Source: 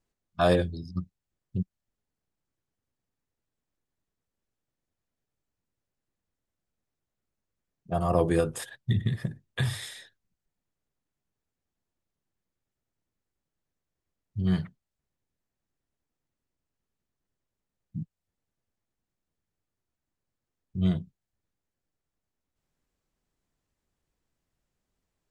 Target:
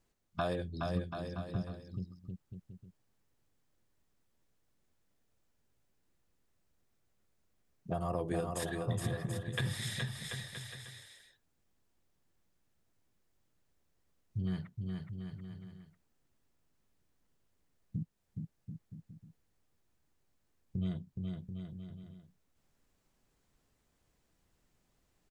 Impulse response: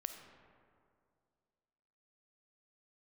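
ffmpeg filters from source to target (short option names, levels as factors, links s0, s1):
-filter_complex "[0:a]acompressor=threshold=0.01:ratio=4,asplit=2[s0][s1];[s1]aecho=0:1:420|735|971.2|1148|1281:0.631|0.398|0.251|0.158|0.1[s2];[s0][s2]amix=inputs=2:normalize=0,volume=1.68"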